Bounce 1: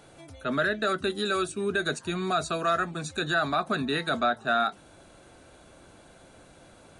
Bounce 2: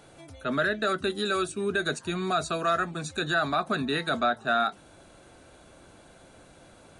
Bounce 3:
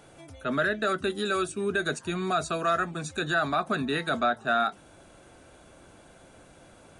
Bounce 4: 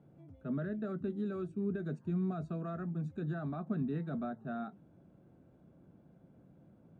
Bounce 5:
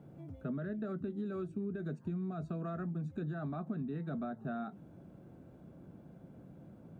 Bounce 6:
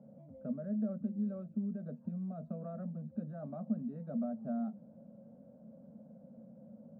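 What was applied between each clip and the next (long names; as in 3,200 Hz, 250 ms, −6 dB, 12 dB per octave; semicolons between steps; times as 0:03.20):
no processing that can be heard
parametric band 4,100 Hz −5.5 dB 0.21 octaves
resonant band-pass 170 Hz, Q 1.9; level +1 dB
downward compressor, threshold −43 dBFS, peak gain reduction 12 dB; level +7 dB
pair of resonant band-passes 350 Hz, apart 1.3 octaves; level +7.5 dB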